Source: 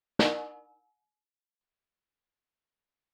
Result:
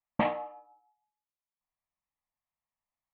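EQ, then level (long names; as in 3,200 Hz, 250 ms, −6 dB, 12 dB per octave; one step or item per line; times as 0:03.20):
transistor ladder low-pass 2,000 Hz, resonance 35%
phaser with its sweep stopped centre 1,500 Hz, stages 6
+8.5 dB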